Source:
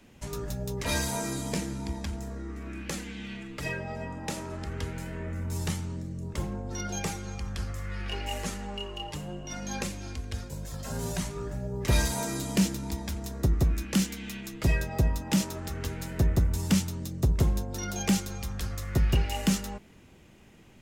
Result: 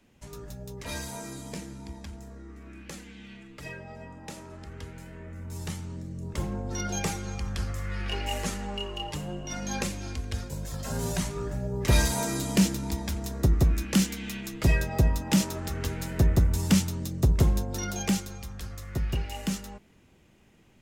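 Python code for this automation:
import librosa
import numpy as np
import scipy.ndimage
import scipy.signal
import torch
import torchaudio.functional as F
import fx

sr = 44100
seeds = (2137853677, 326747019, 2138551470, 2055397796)

y = fx.gain(x, sr, db=fx.line((5.3, -7.0), (6.6, 2.5), (17.77, 2.5), (18.48, -5.0)))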